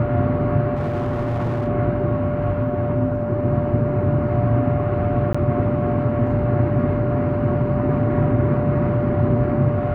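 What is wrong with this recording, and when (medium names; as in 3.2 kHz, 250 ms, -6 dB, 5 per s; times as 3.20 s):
whine 590 Hz -24 dBFS
0.75–1.68 s: clipped -19 dBFS
5.33–5.34 s: dropout 15 ms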